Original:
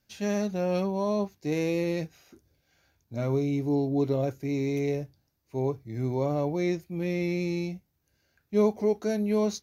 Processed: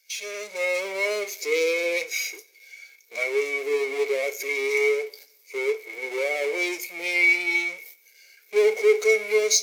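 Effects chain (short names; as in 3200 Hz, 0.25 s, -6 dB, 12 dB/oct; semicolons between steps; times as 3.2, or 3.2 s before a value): gate -56 dBFS, range -35 dB; power-law curve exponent 0.35; differentiator; AGC gain up to 6 dB; weighting filter A; in parallel at -3 dB: compressor, threshold -41 dBFS, peak gain reduction 22 dB; on the sum: small resonant body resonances 440/2200 Hz, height 18 dB, ringing for 25 ms; reverb, pre-delay 3 ms, DRR 11 dB; spectral expander 1.5:1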